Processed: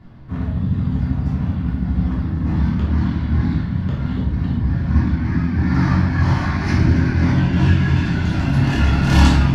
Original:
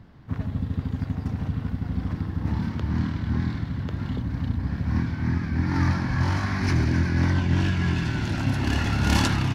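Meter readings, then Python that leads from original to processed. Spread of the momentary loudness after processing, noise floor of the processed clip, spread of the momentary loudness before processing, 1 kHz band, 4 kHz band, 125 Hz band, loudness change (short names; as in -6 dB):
6 LU, -24 dBFS, 7 LU, +5.5 dB, +3.0 dB, +7.5 dB, +7.5 dB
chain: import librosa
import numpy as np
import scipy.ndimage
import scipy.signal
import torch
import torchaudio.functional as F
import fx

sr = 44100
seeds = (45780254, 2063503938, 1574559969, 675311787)

y = fx.dereverb_blind(x, sr, rt60_s=0.75)
y = fx.high_shelf(y, sr, hz=6300.0, db=-6.5)
y = fx.room_shoebox(y, sr, seeds[0], volume_m3=380.0, walls='mixed', distance_m=3.2)
y = y * librosa.db_to_amplitude(-1.5)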